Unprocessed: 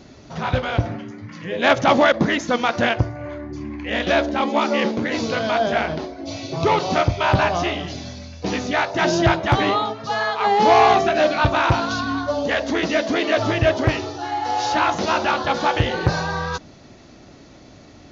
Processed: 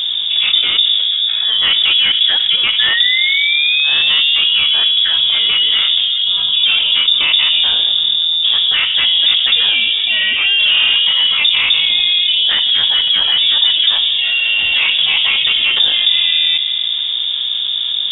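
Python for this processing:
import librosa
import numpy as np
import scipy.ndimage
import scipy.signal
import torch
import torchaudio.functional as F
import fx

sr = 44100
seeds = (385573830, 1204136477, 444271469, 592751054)

y = fx.tilt_eq(x, sr, slope=-4.0)
y = fx.spec_paint(y, sr, seeds[0], shape='fall', start_s=2.79, length_s=1.89, low_hz=650.0, high_hz=1900.0, level_db=-21.0)
y = 10.0 ** (-5.5 / 20.0) * np.tanh(y / 10.0 ** (-5.5 / 20.0))
y = fx.rev_fdn(y, sr, rt60_s=2.1, lf_ratio=1.25, hf_ratio=0.35, size_ms=26.0, drr_db=16.5)
y = fx.freq_invert(y, sr, carrier_hz=3600)
y = fx.env_flatten(y, sr, amount_pct=70)
y = y * librosa.db_to_amplitude(-3.5)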